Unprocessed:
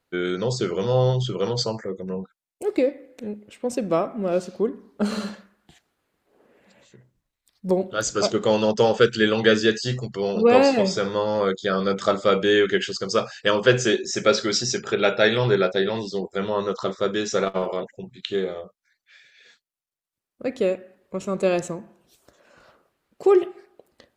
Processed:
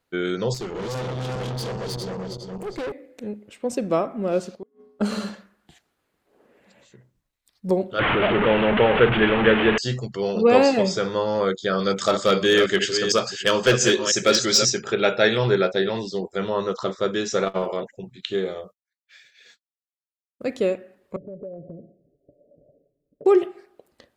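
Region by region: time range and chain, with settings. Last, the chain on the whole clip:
0.54–2.92 s: backward echo that repeats 204 ms, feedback 57%, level -0.5 dB + valve stage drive 27 dB, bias 0.65
4.55–5.01 s: feedback comb 84 Hz, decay 0.75 s, harmonics odd, mix 80% + inverted gate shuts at -25 dBFS, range -32 dB
7.99–9.78 s: one-bit delta coder 16 kbps, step -14.5 dBFS + upward compressor, threshold -19 dBFS
11.79–14.70 s: chunks repeated in reverse 333 ms, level -8 dB + treble shelf 4 kHz +10 dB + hard clipper -10 dBFS
18.45–20.57 s: expander -53 dBFS + treble shelf 4.3 kHz +7 dB
21.16–23.26 s: steep low-pass 650 Hz 96 dB/octave + comb 7 ms, depth 54% + compression 4:1, threshold -36 dBFS
whole clip: none

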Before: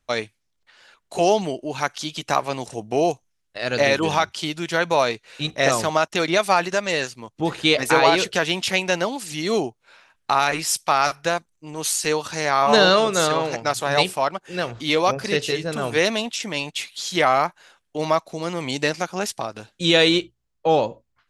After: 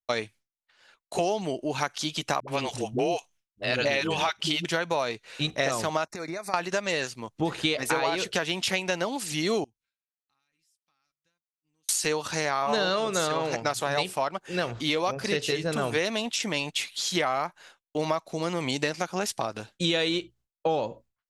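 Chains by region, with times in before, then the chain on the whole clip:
2.40–4.65 s: peaking EQ 2.9 kHz +6.5 dB 0.85 oct + phase dispersion highs, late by 78 ms, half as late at 320 Hz
6.05–6.54 s: compression 8:1, threshold -30 dBFS + Butterworth band-stop 3.1 kHz, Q 1.8
9.64–11.89 s: amplifier tone stack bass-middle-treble 6-0-2 + comb 3.8 ms, depth 36% + compression 12:1, threshold -53 dBFS
whole clip: expander -45 dBFS; compression, threshold -23 dBFS

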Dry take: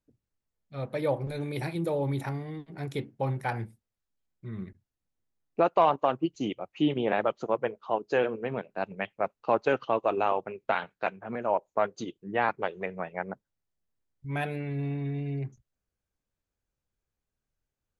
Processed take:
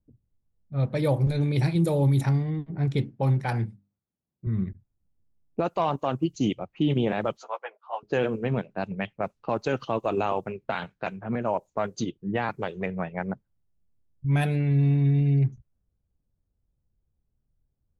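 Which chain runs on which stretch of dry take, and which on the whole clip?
3.11–4.47 s: high-pass 130 Hz + treble shelf 8.5 kHz -3.5 dB + hum notches 50/100/150/200/250/300 Hz
7.37–8.03 s: high-pass 710 Hz 24 dB/octave + three-phase chorus
whole clip: level-controlled noise filter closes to 820 Hz, open at -25 dBFS; tone controls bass +12 dB, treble +12 dB; peak limiter -16.5 dBFS; trim +1.5 dB

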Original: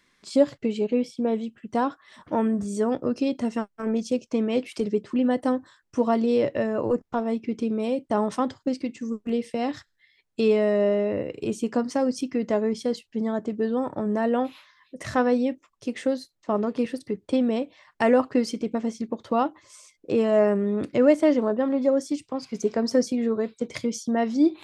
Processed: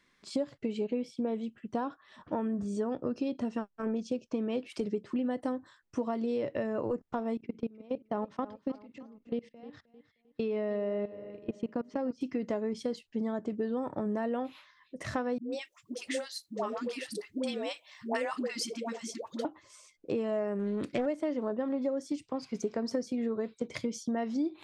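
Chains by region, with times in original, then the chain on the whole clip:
1.73–4.70 s: distance through air 57 m + band-stop 2.1 kHz, Q 8.6
7.37–12.21 s: level held to a coarse grid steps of 24 dB + distance through air 150 m + feedback delay 309 ms, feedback 34%, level -17 dB
15.38–19.45 s: tilt EQ +4 dB/octave + phase dispersion highs, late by 146 ms, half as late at 470 Hz
20.59–21.06 s: treble shelf 2.6 kHz +9.5 dB + loudspeaker Doppler distortion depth 0.27 ms
whole clip: compression 6:1, threshold -25 dBFS; treble shelf 6 kHz -6 dB; trim -3.5 dB

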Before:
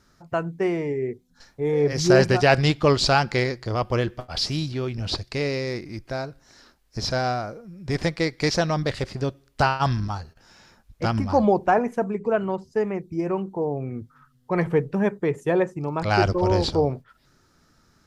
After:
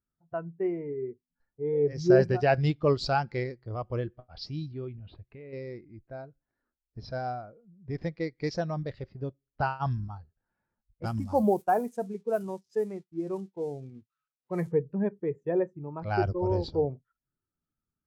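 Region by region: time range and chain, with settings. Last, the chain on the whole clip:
4.93–5.53 s: resonant high shelf 4.2 kHz -8.5 dB, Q 1.5 + compression 10:1, threshold -28 dBFS
11.03–14.72 s: zero-crossing glitches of -24.5 dBFS + expander -29 dBFS + treble shelf 6.6 kHz +12 dB
whole clip: level-controlled noise filter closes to 1.8 kHz, open at -16.5 dBFS; spectral contrast expander 1.5:1; trim -6 dB

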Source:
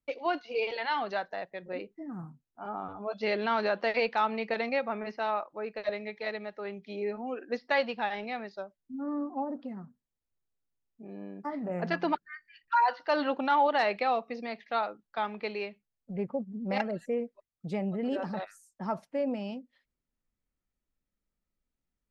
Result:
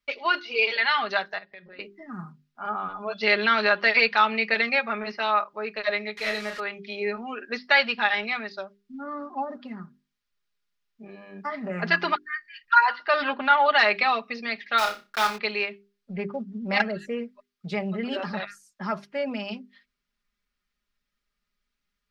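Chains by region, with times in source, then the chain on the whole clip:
1.38–1.79 s: compression 8:1, threshold -48 dBFS + brick-wall FIR low-pass 5.5 kHz
6.17–6.60 s: one-bit delta coder 64 kbps, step -43.5 dBFS + doubling 33 ms -5.5 dB
12.85–13.66 s: distance through air 190 m + loudspeaker Doppler distortion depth 0.12 ms
14.78–15.38 s: block-companded coder 3-bit + flutter echo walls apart 5.3 m, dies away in 0.25 s
whole clip: high-order bell 2.5 kHz +11 dB 2.6 oct; hum notches 50/100/150/200/250/300/350/400 Hz; comb 4.9 ms

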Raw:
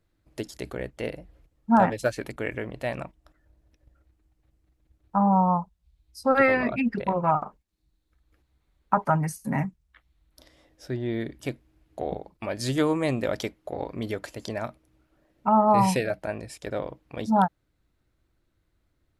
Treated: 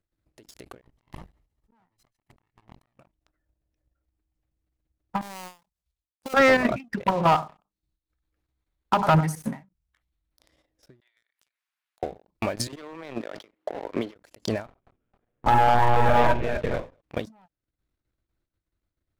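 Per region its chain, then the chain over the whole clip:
0.81–2.99 s: comb filter that takes the minimum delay 1 ms + inverted gate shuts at -21 dBFS, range -41 dB + compressor with a negative ratio -46 dBFS
5.21–6.34 s: dead-time distortion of 0.18 ms + tone controls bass -9 dB, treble +6 dB + compression 16:1, threshold -33 dBFS
7.03–9.62 s: hum notches 50/100/150/200/250/300/350 Hz + feedback delay 96 ms, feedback 18%, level -12.5 dB
11.00–12.03 s: high-pass 1.1 kHz 24 dB/octave + compression, threshold -56 dBFS
12.67–14.16 s: high-pass 47 Hz 24 dB/octave + three-band isolator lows -20 dB, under 260 Hz, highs -21 dB, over 4 kHz + compressor with a negative ratio -39 dBFS
14.66–17.02 s: median filter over 9 samples + monotone LPC vocoder at 8 kHz 120 Hz + multi-tap echo 43/62/93/207/470/475 ms -7/-19/-14/-5/-15/-6.5 dB
whole clip: level held to a coarse grid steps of 12 dB; waveshaping leveller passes 3; endings held to a fixed fall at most 200 dB/s

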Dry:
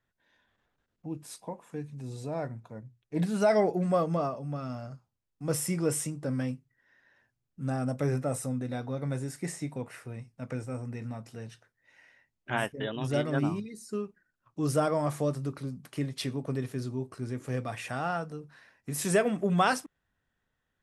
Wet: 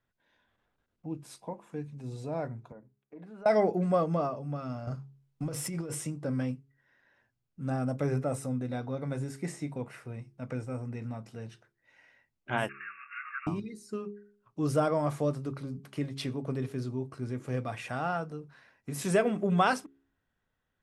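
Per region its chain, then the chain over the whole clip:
2.72–3.46 s: three-band isolator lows -22 dB, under 220 Hz, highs -18 dB, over 2.1 kHz + compression 5:1, threshold -45 dBFS
4.87–5.95 s: compressor with a negative ratio -37 dBFS + waveshaping leveller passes 1
12.69–13.47 s: jump at every zero crossing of -33 dBFS + brick-wall FIR band-pass 1.1–2.8 kHz
whole clip: treble shelf 5.4 kHz -8 dB; band-stop 1.8 kHz, Q 18; de-hum 68.44 Hz, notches 6

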